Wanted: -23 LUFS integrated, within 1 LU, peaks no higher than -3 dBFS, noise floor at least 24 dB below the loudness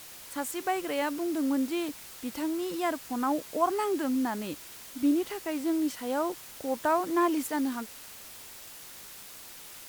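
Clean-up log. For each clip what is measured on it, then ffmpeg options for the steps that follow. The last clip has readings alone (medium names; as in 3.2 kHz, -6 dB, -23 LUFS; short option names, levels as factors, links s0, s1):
noise floor -47 dBFS; noise floor target -55 dBFS; loudness -30.5 LUFS; peak level -13.0 dBFS; loudness target -23.0 LUFS
-> -af "afftdn=nr=8:nf=-47"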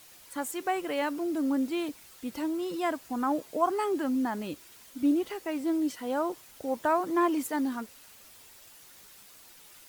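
noise floor -54 dBFS; noise floor target -55 dBFS
-> -af "afftdn=nr=6:nf=-54"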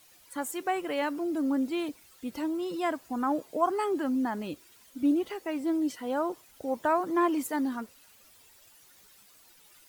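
noise floor -58 dBFS; loudness -30.5 LUFS; peak level -13.0 dBFS; loudness target -23.0 LUFS
-> -af "volume=2.37"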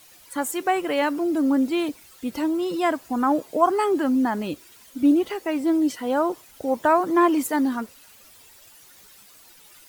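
loudness -23.0 LUFS; peak level -5.5 dBFS; noise floor -51 dBFS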